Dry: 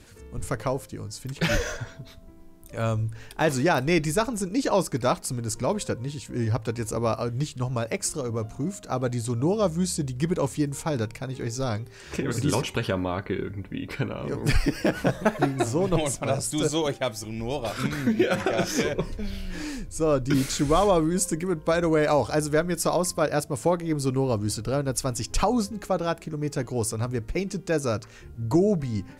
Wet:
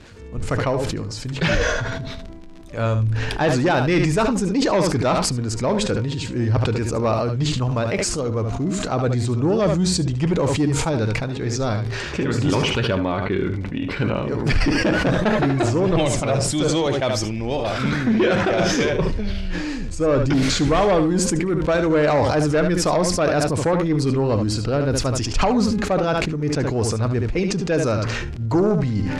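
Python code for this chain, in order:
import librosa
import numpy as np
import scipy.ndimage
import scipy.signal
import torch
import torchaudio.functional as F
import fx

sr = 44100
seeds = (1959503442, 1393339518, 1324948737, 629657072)

p1 = fx.fold_sine(x, sr, drive_db=8, ceiling_db=-8.5)
p2 = x + (p1 * 10.0 ** (-3.0 / 20.0))
p3 = fx.dmg_crackle(p2, sr, seeds[0], per_s=39.0, level_db=-26.0)
p4 = scipy.signal.sosfilt(scipy.signal.butter(2, 4800.0, 'lowpass', fs=sr, output='sos'), p3)
p5 = p4 + 10.0 ** (-10.0 / 20.0) * np.pad(p4, (int(73 * sr / 1000.0), 0))[:len(p4)]
p6 = fx.sustainer(p5, sr, db_per_s=25.0)
y = p6 * 10.0 ** (-6.0 / 20.0)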